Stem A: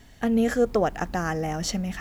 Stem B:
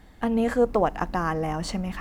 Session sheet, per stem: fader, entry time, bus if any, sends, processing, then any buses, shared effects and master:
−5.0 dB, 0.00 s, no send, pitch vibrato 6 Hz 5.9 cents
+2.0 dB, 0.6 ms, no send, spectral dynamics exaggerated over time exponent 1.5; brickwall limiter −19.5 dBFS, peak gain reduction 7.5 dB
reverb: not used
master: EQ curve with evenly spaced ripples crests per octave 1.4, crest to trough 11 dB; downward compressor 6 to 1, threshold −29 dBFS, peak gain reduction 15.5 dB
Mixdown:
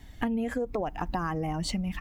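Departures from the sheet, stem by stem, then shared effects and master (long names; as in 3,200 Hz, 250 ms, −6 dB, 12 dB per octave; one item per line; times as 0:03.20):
stem B +2.0 dB → +13.5 dB
master: missing EQ curve with evenly spaced ripples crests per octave 1.4, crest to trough 11 dB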